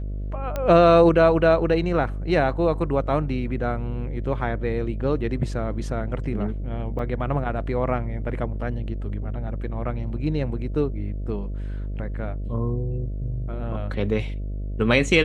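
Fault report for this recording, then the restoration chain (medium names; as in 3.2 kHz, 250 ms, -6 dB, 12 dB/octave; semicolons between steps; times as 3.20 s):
buzz 50 Hz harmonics 13 -29 dBFS
0.56 s: pop -14 dBFS
6.99 s: dropout 3 ms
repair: de-click; de-hum 50 Hz, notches 13; interpolate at 6.99 s, 3 ms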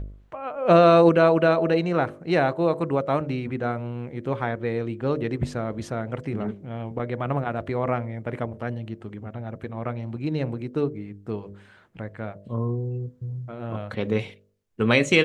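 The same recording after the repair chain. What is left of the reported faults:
nothing left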